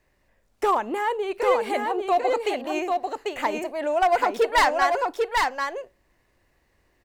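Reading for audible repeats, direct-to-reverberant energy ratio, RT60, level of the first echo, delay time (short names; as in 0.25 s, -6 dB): 1, none, none, -3.5 dB, 0.794 s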